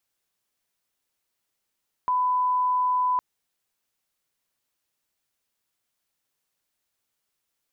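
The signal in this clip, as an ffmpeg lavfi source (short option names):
-f lavfi -i "sine=f=1000:d=1.11:r=44100,volume=-1.94dB"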